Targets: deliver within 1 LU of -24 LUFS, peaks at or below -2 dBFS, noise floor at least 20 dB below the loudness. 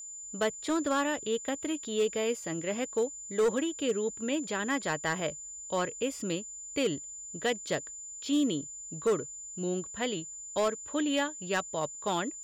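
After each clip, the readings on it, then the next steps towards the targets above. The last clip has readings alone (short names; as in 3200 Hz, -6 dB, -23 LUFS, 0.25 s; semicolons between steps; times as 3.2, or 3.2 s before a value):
clipped 0.9%; flat tops at -21.5 dBFS; steady tone 7100 Hz; tone level -41 dBFS; loudness -32.0 LUFS; peak -21.5 dBFS; loudness target -24.0 LUFS
-> clip repair -21.5 dBFS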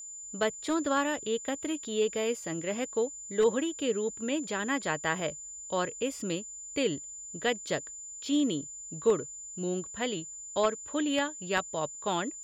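clipped 0.0%; steady tone 7100 Hz; tone level -41 dBFS
-> notch 7100 Hz, Q 30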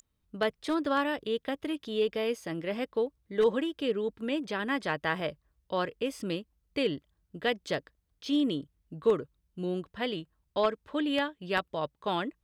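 steady tone none; loudness -32.0 LUFS; peak -12.5 dBFS; loudness target -24.0 LUFS
-> gain +8 dB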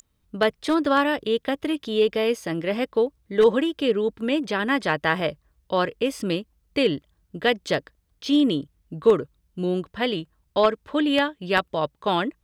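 loudness -24.0 LUFS; peak -4.5 dBFS; noise floor -70 dBFS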